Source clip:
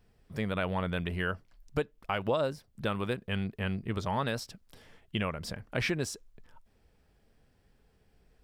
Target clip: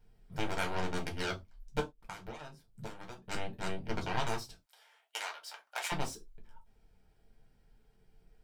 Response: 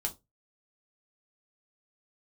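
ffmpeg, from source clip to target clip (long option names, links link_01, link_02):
-filter_complex "[0:a]aeval=exprs='0.15*(cos(1*acos(clip(val(0)/0.15,-1,1)))-cos(1*PI/2))+0.0422*(cos(7*acos(clip(val(0)/0.15,-1,1)))-cos(7*PI/2))':channel_layout=same,asplit=3[link_01][link_02][link_03];[link_01]afade=type=out:start_time=1.79:duration=0.02[link_04];[link_02]acompressor=threshold=-38dB:ratio=16,afade=type=in:start_time=1.79:duration=0.02,afade=type=out:start_time=3.22:duration=0.02[link_05];[link_03]afade=type=in:start_time=3.22:duration=0.02[link_06];[link_04][link_05][link_06]amix=inputs=3:normalize=0,asettb=1/sr,asplit=3[link_07][link_08][link_09];[link_07]atrim=end=4.544[link_10];[link_08]atrim=start=4.54:end=5.92,asetpts=PTS-STARTPTS,afade=type=in:duration=0.004:curve=qsin,afade=type=out:start_time=1.376:duration=0.004:curve=qsin,highpass=frequency=690:width=0.5412,highpass=frequency=690:width=1.3066[link_11];[link_09]atrim=start=5.916[link_12];[link_10][link_11]acrossfade=duration=0.004:curve1=hsin:curve2=qsin[link_13];[link_13][link_12]acrossfade=duration=0.004:curve1=qsin:curve2=hsin[link_14];[1:a]atrim=start_sample=2205,afade=type=out:start_time=0.17:duration=0.01,atrim=end_sample=7938[link_15];[link_14][link_15]afir=irnorm=-1:irlink=0,volume=-5dB"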